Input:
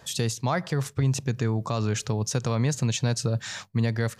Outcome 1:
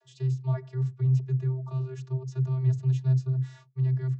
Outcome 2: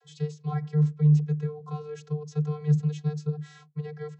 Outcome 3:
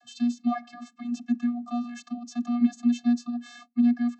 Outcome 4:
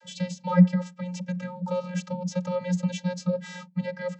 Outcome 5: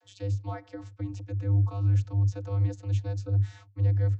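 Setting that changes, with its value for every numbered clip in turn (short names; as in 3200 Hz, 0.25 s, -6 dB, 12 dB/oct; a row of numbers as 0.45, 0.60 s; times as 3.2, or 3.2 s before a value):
vocoder, frequency: 130, 150, 240, 180, 100 Hz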